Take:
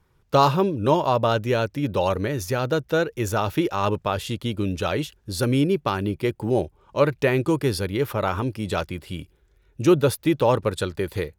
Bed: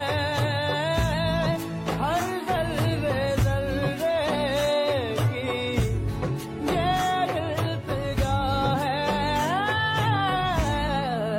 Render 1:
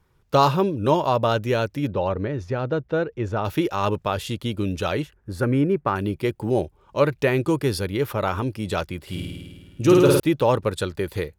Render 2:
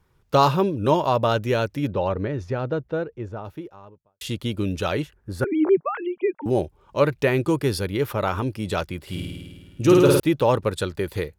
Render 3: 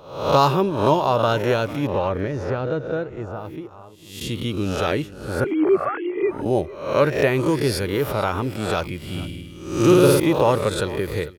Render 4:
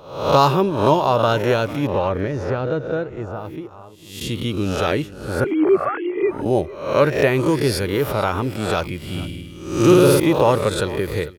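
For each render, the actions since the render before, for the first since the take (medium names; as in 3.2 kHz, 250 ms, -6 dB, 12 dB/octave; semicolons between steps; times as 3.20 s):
1.90–3.45 s: tape spacing loss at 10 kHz 28 dB; 5.02–5.96 s: resonant high shelf 2.5 kHz -11.5 dB, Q 1.5; 9.02–10.20 s: flutter echo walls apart 9 m, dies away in 1.5 s
2.28–4.21 s: studio fade out; 5.44–6.46 s: formants replaced by sine waves
reverse spectral sustain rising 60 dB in 0.62 s; delay 448 ms -18 dB
trim +2 dB; peak limiter -2 dBFS, peak gain reduction 2 dB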